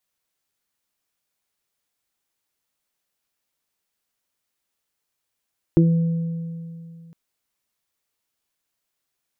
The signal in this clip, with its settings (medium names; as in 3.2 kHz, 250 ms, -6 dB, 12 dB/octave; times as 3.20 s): additive tone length 1.36 s, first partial 166 Hz, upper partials 2.5/-17 dB, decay 2.63 s, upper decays 0.24/2.14 s, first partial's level -12 dB